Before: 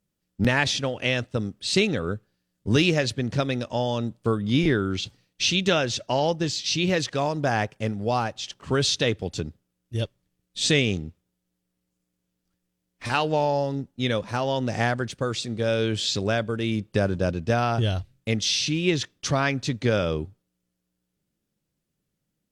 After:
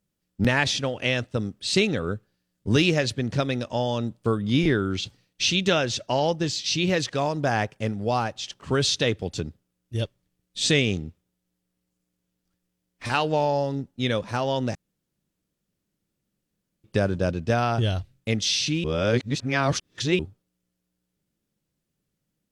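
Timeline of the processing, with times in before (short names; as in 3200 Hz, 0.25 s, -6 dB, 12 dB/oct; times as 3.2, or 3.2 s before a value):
14.75–16.84 room tone
18.84–20.19 reverse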